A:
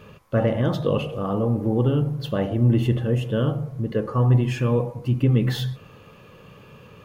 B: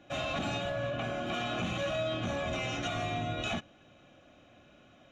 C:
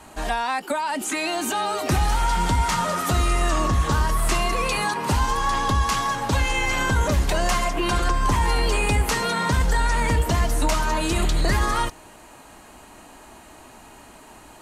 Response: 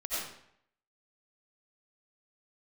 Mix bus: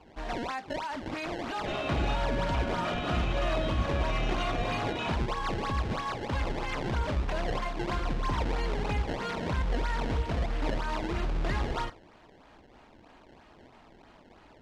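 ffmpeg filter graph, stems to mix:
-filter_complex "[1:a]adelay=1550,volume=0.944[s0];[2:a]bandreject=f=98.95:t=h:w=4,bandreject=f=197.9:t=h:w=4,bandreject=f=296.85:t=h:w=4,bandreject=f=395.8:t=h:w=4,bandreject=f=494.75:t=h:w=4,bandreject=f=593.7:t=h:w=4,bandreject=f=692.65:t=h:w=4,bandreject=f=791.6:t=h:w=4,bandreject=f=890.55:t=h:w=4,bandreject=f=989.5:t=h:w=4,bandreject=f=1088.45:t=h:w=4,bandreject=f=1187.4:t=h:w=4,bandreject=f=1286.35:t=h:w=4,bandreject=f=1385.3:t=h:w=4,bandreject=f=1484.25:t=h:w=4,bandreject=f=1583.2:t=h:w=4,bandreject=f=1682.15:t=h:w=4,bandreject=f=1781.1:t=h:w=4,bandreject=f=1880.05:t=h:w=4,bandreject=f=1979:t=h:w=4,bandreject=f=2077.95:t=h:w=4,bandreject=f=2176.9:t=h:w=4,bandreject=f=2275.85:t=h:w=4,bandreject=f=2374.8:t=h:w=4,bandreject=f=2473.75:t=h:w=4,bandreject=f=2572.7:t=h:w=4,bandreject=f=2671.65:t=h:w=4,bandreject=f=2770.6:t=h:w=4,bandreject=f=2869.55:t=h:w=4,bandreject=f=2968.5:t=h:w=4,bandreject=f=3067.45:t=h:w=4,bandreject=f=3166.4:t=h:w=4,bandreject=f=3265.35:t=h:w=4,bandreject=f=3364.3:t=h:w=4,bandreject=f=3463.25:t=h:w=4,bandreject=f=3562.2:t=h:w=4,bandreject=f=3661.15:t=h:w=4,bandreject=f=3760.1:t=h:w=4,bandreject=f=3859.05:t=h:w=4,acrusher=samples=21:mix=1:aa=0.000001:lfo=1:lforange=33.6:lforate=3.1,volume=0.355[s1];[s0][s1]amix=inputs=2:normalize=0,lowpass=4200"

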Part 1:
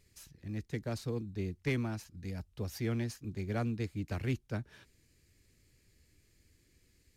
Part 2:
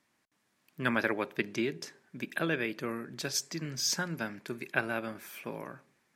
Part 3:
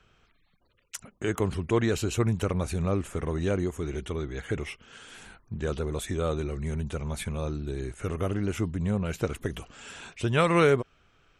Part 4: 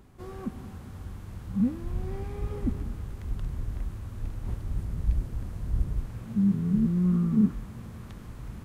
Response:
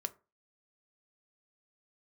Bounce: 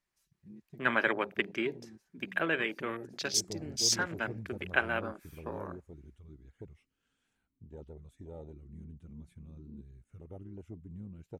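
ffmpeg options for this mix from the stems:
-filter_complex "[0:a]aecho=1:1:5.3:0.94,acompressor=threshold=0.0141:ratio=6,volume=0.282,asplit=2[s0][s1];[s1]volume=0.211[s2];[1:a]highpass=f=510:p=1,volume=1.19,asplit=2[s3][s4];[s4]volume=0.266[s5];[2:a]adelay=2100,volume=0.141[s6];[3:a]asplit=3[s7][s8][s9];[s7]bandpass=f=270:t=q:w=8,volume=1[s10];[s8]bandpass=f=2290:t=q:w=8,volume=0.501[s11];[s9]bandpass=f=3010:t=q:w=8,volume=0.355[s12];[s10][s11][s12]amix=inputs=3:normalize=0,adelay=2350,volume=0.119[s13];[4:a]atrim=start_sample=2205[s14];[s2][s5]amix=inputs=2:normalize=0[s15];[s15][s14]afir=irnorm=-1:irlink=0[s16];[s0][s3][s6][s13][s16]amix=inputs=5:normalize=0,afwtdn=0.0112"

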